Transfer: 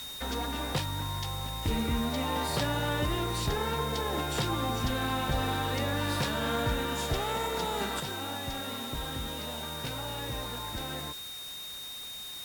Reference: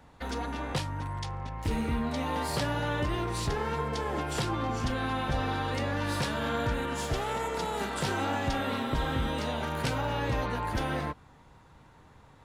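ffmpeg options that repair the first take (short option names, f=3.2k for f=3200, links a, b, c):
-af "bandreject=f=3.7k:w=30,afwtdn=0.005,asetnsamples=n=441:p=0,asendcmd='8 volume volume 7.5dB',volume=0dB"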